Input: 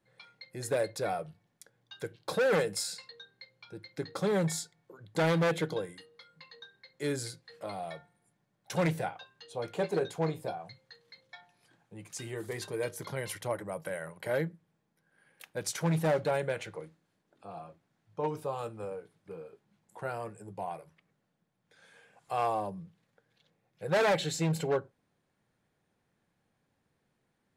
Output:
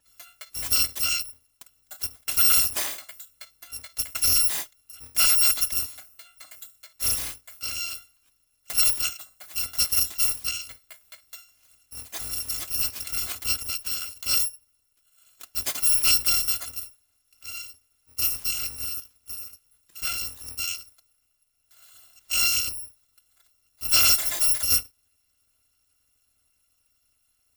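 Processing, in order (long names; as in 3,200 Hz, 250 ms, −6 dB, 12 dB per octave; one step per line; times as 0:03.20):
samples in bit-reversed order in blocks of 256 samples
level +7.5 dB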